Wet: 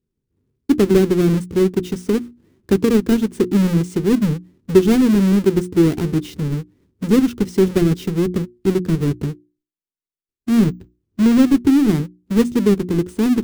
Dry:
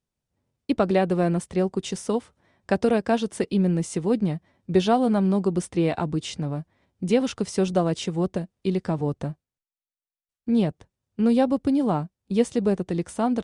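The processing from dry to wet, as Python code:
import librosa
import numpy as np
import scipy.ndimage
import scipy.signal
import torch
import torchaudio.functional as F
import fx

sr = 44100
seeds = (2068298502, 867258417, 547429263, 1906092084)

y = fx.halfwave_hold(x, sr)
y = fx.low_shelf_res(y, sr, hz=490.0, db=9.0, q=3.0)
y = fx.hum_notches(y, sr, base_hz=60, count=6)
y = fx.resample_bad(y, sr, factor=2, down='filtered', up='hold', at=(10.64, 11.45))
y = y * 10.0 ** (-6.5 / 20.0)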